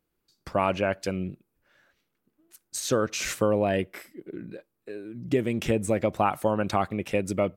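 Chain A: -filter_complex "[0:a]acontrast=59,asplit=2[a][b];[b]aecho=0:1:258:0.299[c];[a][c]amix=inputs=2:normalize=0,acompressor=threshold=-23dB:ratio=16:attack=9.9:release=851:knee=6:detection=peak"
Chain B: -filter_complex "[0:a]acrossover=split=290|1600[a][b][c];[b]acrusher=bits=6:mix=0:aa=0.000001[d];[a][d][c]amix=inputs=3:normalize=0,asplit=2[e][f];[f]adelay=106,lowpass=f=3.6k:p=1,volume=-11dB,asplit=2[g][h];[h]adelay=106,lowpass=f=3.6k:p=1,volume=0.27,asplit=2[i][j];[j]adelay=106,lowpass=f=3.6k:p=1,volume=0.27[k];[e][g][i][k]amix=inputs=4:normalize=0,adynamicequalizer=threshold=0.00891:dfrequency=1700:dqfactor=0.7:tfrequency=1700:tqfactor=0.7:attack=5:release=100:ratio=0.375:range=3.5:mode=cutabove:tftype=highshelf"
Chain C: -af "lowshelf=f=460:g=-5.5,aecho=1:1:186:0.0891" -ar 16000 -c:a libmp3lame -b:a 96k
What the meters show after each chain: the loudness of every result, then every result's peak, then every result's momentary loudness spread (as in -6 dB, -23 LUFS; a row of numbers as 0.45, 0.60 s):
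-31.0, -27.5, -30.0 LUFS; -12.5, -10.0, -11.5 dBFS; 9, 16, 17 LU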